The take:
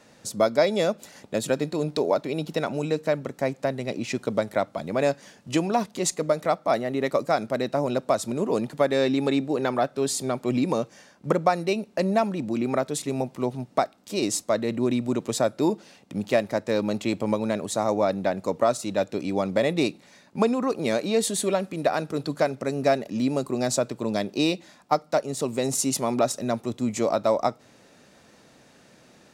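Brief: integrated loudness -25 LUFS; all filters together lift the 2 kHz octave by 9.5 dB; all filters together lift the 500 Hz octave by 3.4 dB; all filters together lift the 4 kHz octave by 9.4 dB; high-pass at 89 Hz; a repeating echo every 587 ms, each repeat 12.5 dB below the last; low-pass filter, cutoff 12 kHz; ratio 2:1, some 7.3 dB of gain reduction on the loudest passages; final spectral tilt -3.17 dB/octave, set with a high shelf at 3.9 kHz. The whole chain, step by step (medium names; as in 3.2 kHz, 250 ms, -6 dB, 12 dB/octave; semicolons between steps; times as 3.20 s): high-pass 89 Hz; low-pass 12 kHz; peaking EQ 500 Hz +3.5 dB; peaking EQ 2 kHz +8.5 dB; treble shelf 3.9 kHz +9 dB; peaking EQ 4 kHz +3.5 dB; compression 2:1, threshold -26 dBFS; feedback delay 587 ms, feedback 24%, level -12.5 dB; trim +2 dB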